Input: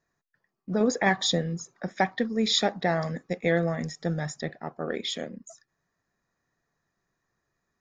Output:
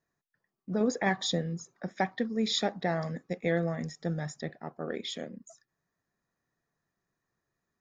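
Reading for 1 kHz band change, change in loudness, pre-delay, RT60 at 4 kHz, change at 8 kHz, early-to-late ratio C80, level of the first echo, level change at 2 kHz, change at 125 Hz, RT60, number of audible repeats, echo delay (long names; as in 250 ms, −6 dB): −5.0 dB, −4.5 dB, no reverb audible, no reverb audible, −6.0 dB, no reverb audible, no echo audible, −6.0 dB, −3.5 dB, no reverb audible, no echo audible, no echo audible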